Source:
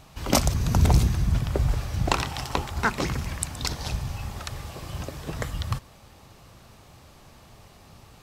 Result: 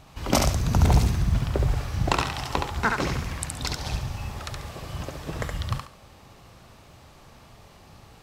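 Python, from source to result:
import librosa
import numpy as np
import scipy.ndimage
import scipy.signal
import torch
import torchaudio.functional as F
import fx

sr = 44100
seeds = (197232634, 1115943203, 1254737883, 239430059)

y = fx.high_shelf(x, sr, hz=5400.0, db=-5.0)
y = fx.quant_float(y, sr, bits=6)
y = fx.echo_thinned(y, sr, ms=70, feedback_pct=26, hz=420.0, wet_db=-3.0)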